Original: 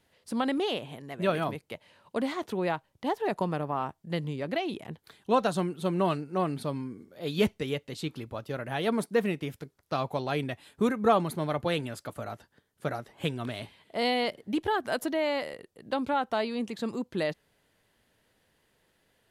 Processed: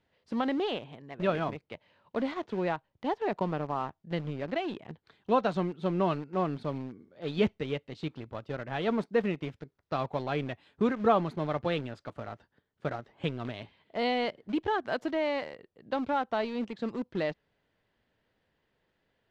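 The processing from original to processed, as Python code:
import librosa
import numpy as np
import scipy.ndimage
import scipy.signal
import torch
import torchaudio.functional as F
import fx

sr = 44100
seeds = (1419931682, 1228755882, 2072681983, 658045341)

p1 = np.where(np.abs(x) >= 10.0 ** (-32.0 / 20.0), x, 0.0)
p2 = x + (p1 * 10.0 ** (-5.0 / 20.0))
p3 = fx.air_absorb(p2, sr, metres=170.0)
y = p3 * 10.0 ** (-4.5 / 20.0)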